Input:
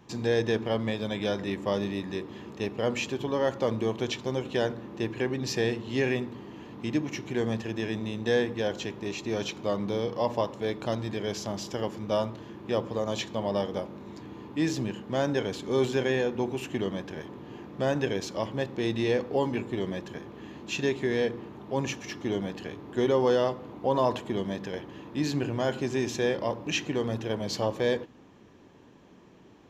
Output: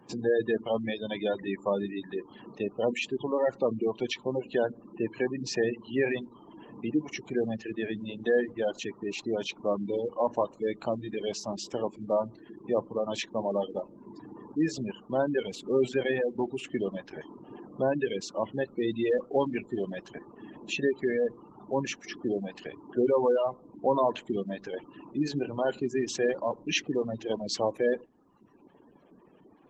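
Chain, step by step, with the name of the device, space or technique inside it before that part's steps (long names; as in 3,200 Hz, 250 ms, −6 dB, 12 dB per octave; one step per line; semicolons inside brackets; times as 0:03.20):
reverb reduction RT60 1 s
noise-suppressed video call (high-pass filter 170 Hz 12 dB per octave; gate on every frequency bin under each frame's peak −20 dB strong; level +1.5 dB; Opus 20 kbit/s 48,000 Hz)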